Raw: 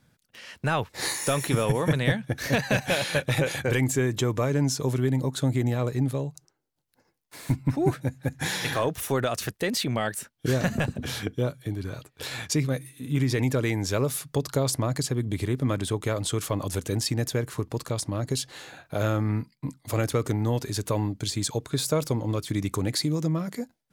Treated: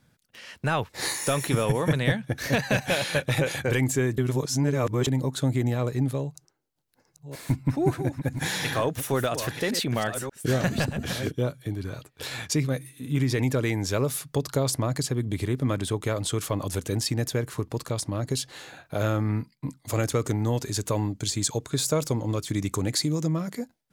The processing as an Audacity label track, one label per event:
4.180000	5.070000	reverse
6.180000	11.360000	chunks repeated in reverse 588 ms, level -9 dB
19.810000	23.500000	peaking EQ 7 kHz +5.5 dB 0.53 oct

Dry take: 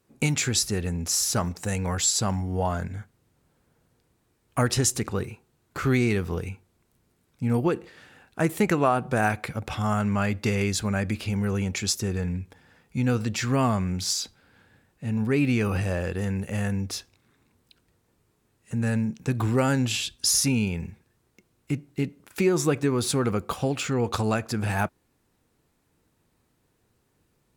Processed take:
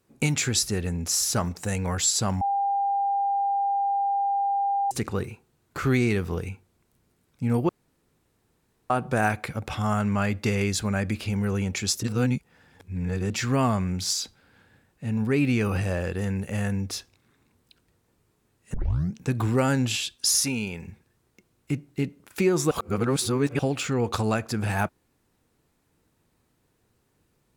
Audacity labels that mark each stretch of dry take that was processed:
2.410000	4.910000	bleep 798 Hz -21.5 dBFS
7.690000	8.900000	room tone
12.030000	13.300000	reverse
18.740000	18.740000	tape start 0.40 s
19.960000	20.870000	bass shelf 220 Hz -11 dB
22.710000	23.590000	reverse

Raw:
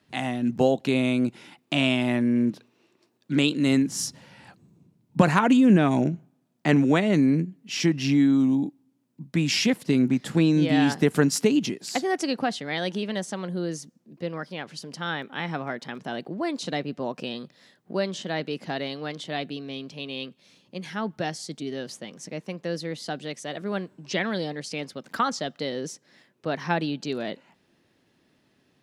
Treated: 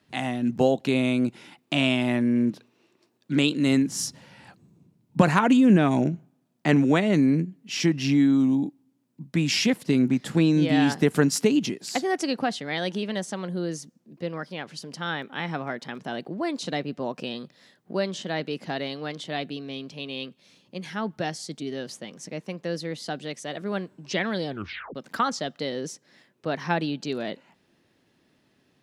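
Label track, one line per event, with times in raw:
24.470000	24.470000	tape stop 0.48 s

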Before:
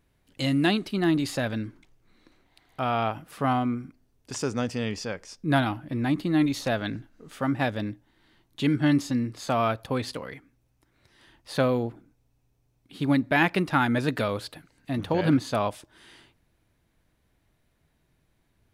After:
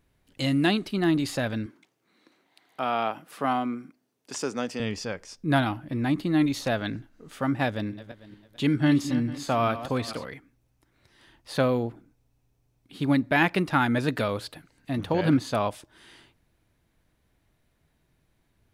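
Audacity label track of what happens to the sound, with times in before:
1.660000	4.800000	Bessel high-pass 240 Hz, order 4
7.670000	10.250000	backward echo that repeats 224 ms, feedback 44%, level -12 dB

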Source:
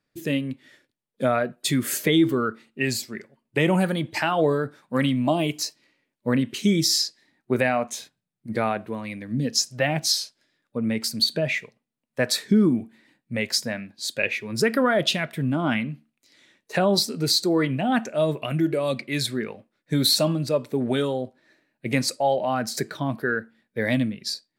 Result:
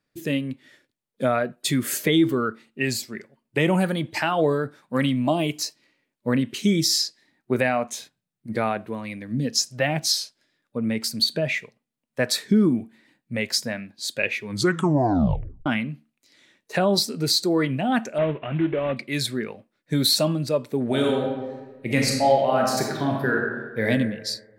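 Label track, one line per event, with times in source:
14.440000	14.440000	tape stop 1.22 s
18.180000	18.970000	CVSD coder 16 kbps
20.860000	23.870000	reverb throw, RT60 1.3 s, DRR -0.5 dB

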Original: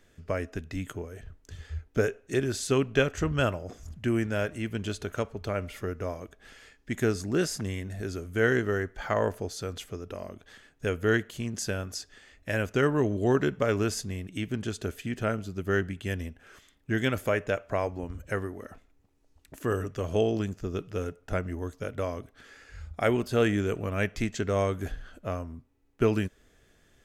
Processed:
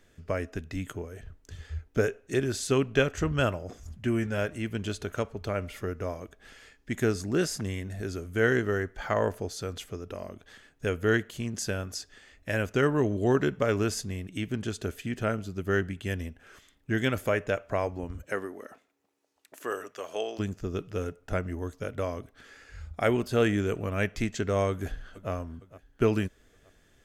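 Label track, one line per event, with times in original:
3.800000	4.380000	comb of notches 160 Hz
18.220000	20.380000	high-pass 220 Hz -> 730 Hz
24.690000	25.310000	echo throw 460 ms, feedback 50%, level -17 dB

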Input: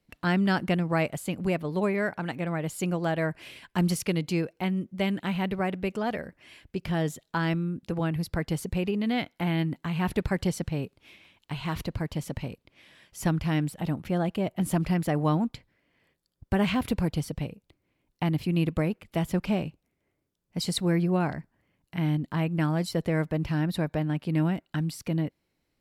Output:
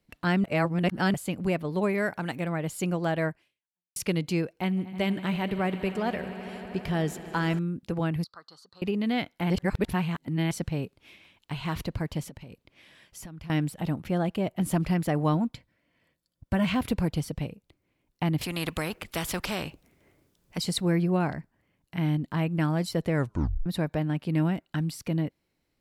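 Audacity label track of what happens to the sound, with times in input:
0.440000	1.140000	reverse
1.890000	2.480000	treble shelf 6.7 kHz +9 dB
3.280000	3.960000	fade out exponential
4.560000	7.590000	echo with a slow build-up 80 ms, loudest repeat 5, its level -18 dB
8.240000	8.820000	two resonant band-passes 2.3 kHz, apart 1.8 oct
9.500000	10.510000	reverse
12.250000	13.500000	compression 12:1, threshold -39 dBFS
15.340000	16.710000	comb of notches 410 Hz
18.410000	20.580000	spectrum-flattening compressor 2:1
23.150000	23.150000	tape stop 0.51 s

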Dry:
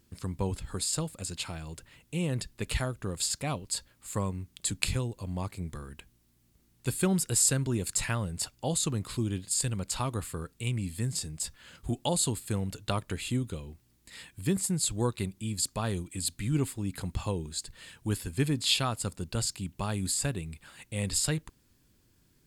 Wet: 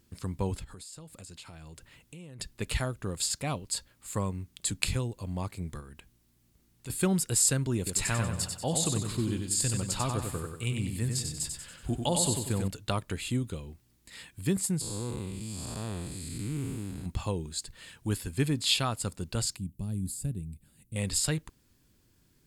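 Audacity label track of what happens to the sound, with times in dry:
0.640000	2.400000	compression, threshold -44 dBFS
5.800000	6.900000	compression 2:1, threshold -46 dBFS
7.770000	12.680000	feedback delay 94 ms, feedback 45%, level -5 dB
14.810000	17.060000	spectral blur width 338 ms
19.570000	20.960000	FFT filter 210 Hz 0 dB, 1.1 kHz -25 dB, 6.2 kHz -14 dB, 11 kHz -3 dB

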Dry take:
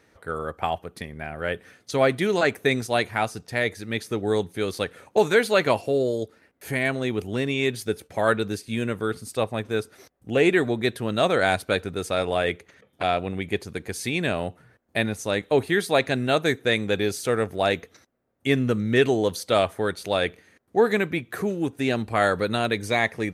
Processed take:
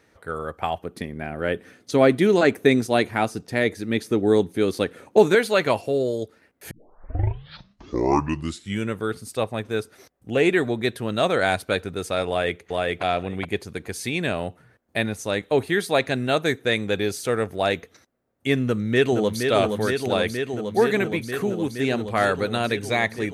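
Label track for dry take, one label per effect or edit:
0.830000	5.350000	peaking EQ 280 Hz +8.5 dB 1.5 oct
6.710000	6.710000	tape start 2.26 s
12.280000	13.020000	echo throw 420 ms, feedback 10%, level -1 dB
18.650000	19.460000	echo throw 470 ms, feedback 85%, level -5.5 dB

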